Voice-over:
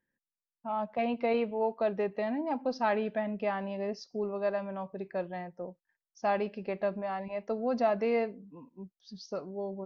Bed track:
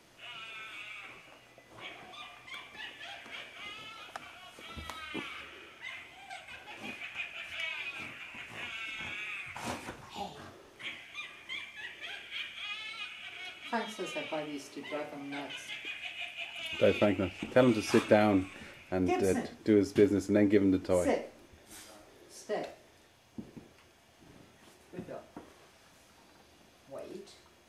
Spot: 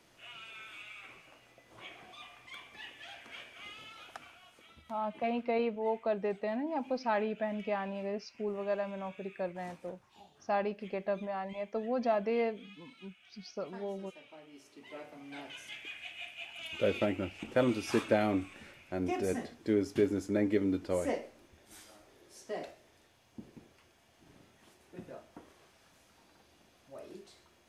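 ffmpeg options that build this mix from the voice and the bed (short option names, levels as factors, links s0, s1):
-filter_complex "[0:a]adelay=4250,volume=0.75[s0];[1:a]volume=2.99,afade=t=out:st=4.1:d=0.75:silence=0.211349,afade=t=in:st=14.38:d=1.3:silence=0.223872[s1];[s0][s1]amix=inputs=2:normalize=0"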